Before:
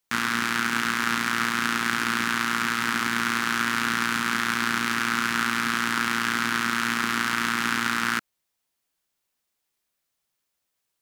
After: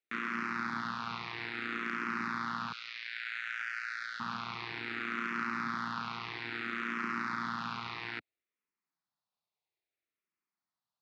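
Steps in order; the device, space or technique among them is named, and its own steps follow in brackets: 2.72–4.20 s: elliptic high-pass 1.5 kHz, stop band 40 dB; barber-pole phaser into a guitar amplifier (barber-pole phaser -0.6 Hz; saturation -17.5 dBFS, distortion -16 dB; cabinet simulation 110–4000 Hz, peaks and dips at 250 Hz -5 dB, 530 Hz -6 dB, 1.6 kHz -6 dB, 3.1 kHz -9 dB); trim -4 dB

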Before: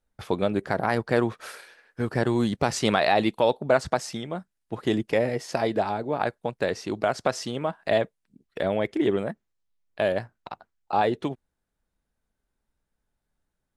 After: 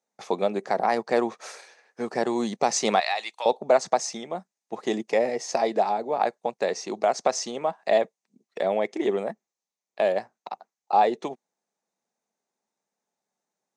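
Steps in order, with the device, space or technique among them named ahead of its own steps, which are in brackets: television speaker (cabinet simulation 220–8700 Hz, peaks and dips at 290 Hz -9 dB, 770 Hz +5 dB, 1.5 kHz -8 dB, 3.1 kHz -6 dB, 6.3 kHz +9 dB); 3.00–3.46 s: high-pass 1.4 kHz 12 dB/octave; trim +1 dB

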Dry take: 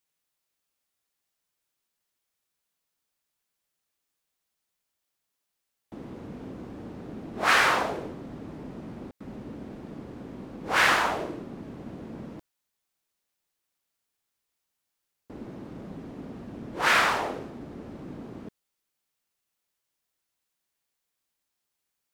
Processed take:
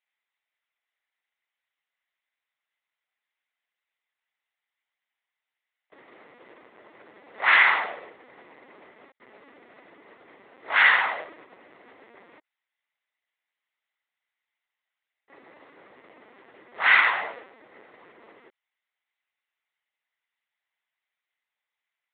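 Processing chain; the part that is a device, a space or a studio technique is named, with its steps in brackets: talking toy (LPC vocoder at 8 kHz pitch kept; high-pass 670 Hz 12 dB/octave; peaking EQ 2 kHz +11 dB 0.31 oct)

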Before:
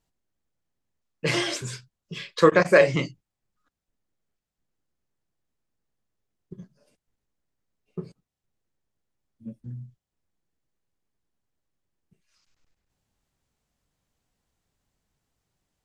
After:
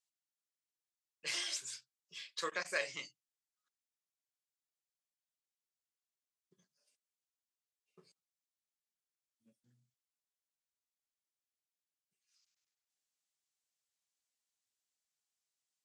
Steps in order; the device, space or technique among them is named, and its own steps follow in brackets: piezo pickup straight into a mixer (low-pass 8.1 kHz 12 dB/octave; differentiator); trim -3 dB

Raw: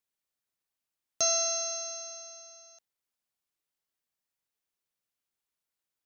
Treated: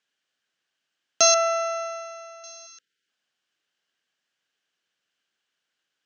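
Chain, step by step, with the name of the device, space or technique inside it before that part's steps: 1.34–2.44 s: resonant high shelf 2.8 kHz -13.5 dB, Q 1.5; television speaker (cabinet simulation 170–6800 Hz, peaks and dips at 940 Hz -4 dB, 1.6 kHz +10 dB, 3 kHz +9 dB); 2.66–3.08 s: spectral selection erased 520–1300 Hz; dynamic bell 920 Hz, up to +4 dB, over -45 dBFS, Q 0.91; trim +9 dB

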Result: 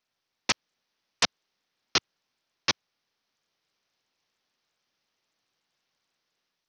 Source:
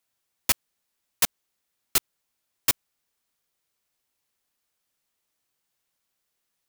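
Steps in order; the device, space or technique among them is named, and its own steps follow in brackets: Bluetooth headset (high-pass 110 Hz 12 dB/octave; level rider gain up to 4 dB; resampled via 16 kHz; SBC 64 kbps 48 kHz)

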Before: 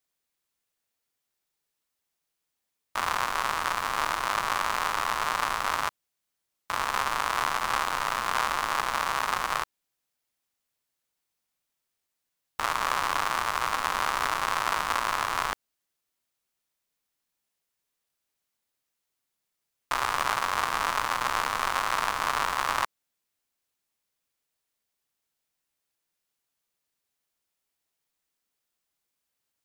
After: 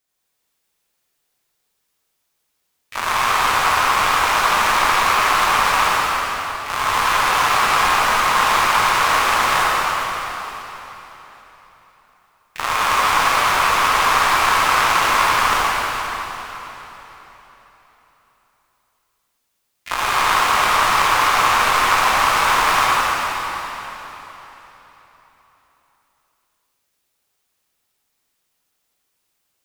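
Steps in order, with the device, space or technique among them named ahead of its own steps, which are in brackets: shimmer-style reverb (harmony voices +12 st -9 dB; reverberation RT60 3.9 s, pre-delay 58 ms, DRR -6.5 dB); trim +4 dB

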